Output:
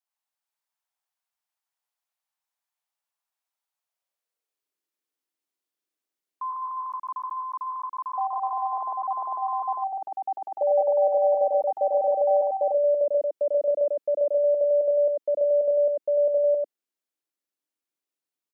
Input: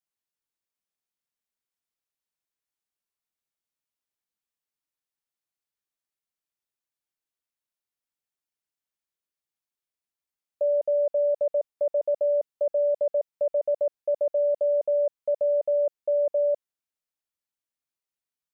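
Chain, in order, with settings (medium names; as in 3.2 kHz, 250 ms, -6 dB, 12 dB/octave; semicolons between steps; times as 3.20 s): ever faster or slower copies 229 ms, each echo +5 st, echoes 2; high-pass sweep 810 Hz -> 300 Hz, 3.71–4.85 s; delay 96 ms -3 dB; trim -2 dB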